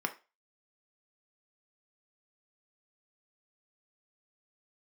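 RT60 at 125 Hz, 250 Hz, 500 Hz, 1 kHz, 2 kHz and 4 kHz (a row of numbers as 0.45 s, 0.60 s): 0.20 s, 0.25 s, 0.30 s, 0.30 s, 0.30 s, 0.30 s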